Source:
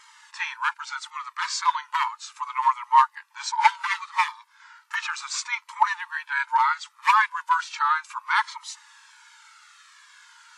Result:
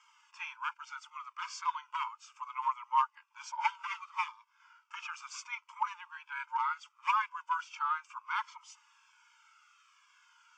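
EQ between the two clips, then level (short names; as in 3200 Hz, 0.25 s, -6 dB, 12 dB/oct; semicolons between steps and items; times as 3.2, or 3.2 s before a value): band-pass 2000 Hz, Q 0.61; fixed phaser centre 2700 Hz, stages 8; -8.0 dB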